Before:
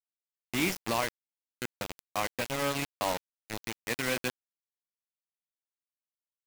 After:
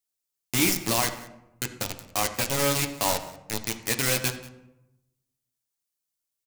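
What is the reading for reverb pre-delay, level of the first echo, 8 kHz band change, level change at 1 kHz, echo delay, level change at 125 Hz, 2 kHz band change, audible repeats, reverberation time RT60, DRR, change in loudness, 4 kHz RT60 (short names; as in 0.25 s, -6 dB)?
7 ms, -20.5 dB, +12.5 dB, +3.5 dB, 0.186 s, +8.5 dB, +4.0 dB, 1, 0.90 s, 5.0 dB, +7.0 dB, 0.55 s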